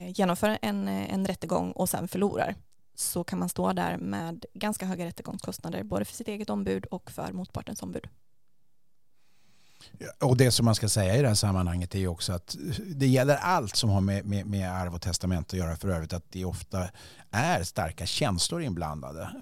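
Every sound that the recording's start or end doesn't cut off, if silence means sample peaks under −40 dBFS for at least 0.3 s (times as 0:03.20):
0:02.98–0:08.07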